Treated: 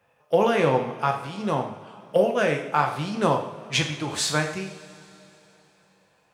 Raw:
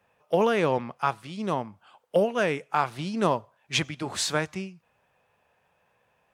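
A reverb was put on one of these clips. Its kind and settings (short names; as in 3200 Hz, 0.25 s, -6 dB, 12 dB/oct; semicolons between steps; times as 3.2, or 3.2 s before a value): two-slope reverb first 0.6 s, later 3.6 s, from -18 dB, DRR 2.5 dB; gain +1 dB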